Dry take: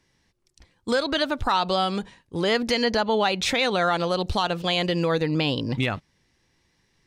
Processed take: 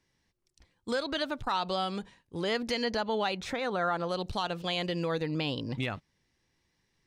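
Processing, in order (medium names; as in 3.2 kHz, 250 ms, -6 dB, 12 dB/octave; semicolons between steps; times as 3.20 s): 3.37–4.09 s: resonant high shelf 2 kHz -7 dB, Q 1.5; transformer saturation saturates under 150 Hz; trim -8 dB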